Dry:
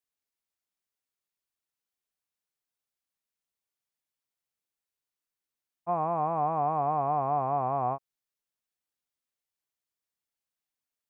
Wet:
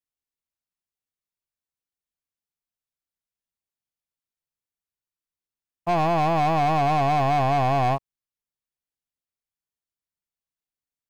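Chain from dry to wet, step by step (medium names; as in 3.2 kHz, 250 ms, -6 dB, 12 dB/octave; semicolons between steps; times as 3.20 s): waveshaping leveller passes 3; bass shelf 190 Hz +10.5 dB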